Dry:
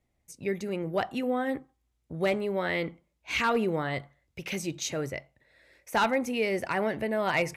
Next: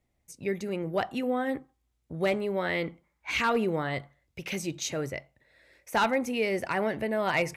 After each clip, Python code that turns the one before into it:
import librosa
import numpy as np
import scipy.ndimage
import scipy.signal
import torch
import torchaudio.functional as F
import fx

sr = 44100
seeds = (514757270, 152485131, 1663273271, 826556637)

y = fx.spec_box(x, sr, start_s=3.04, length_s=0.26, low_hz=770.0, high_hz=2400.0, gain_db=10)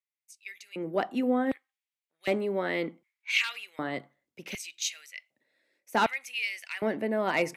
y = fx.filter_lfo_highpass(x, sr, shape='square', hz=0.66, low_hz=250.0, high_hz=2400.0, q=1.9)
y = fx.band_widen(y, sr, depth_pct=40)
y = y * 10.0 ** (-2.0 / 20.0)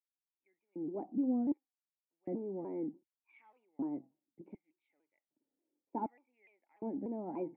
y = fx.formant_cascade(x, sr, vowel='u')
y = fx.vibrato_shape(y, sr, shape='saw_down', rate_hz=3.4, depth_cents=160.0)
y = y * 10.0 ** (1.0 / 20.0)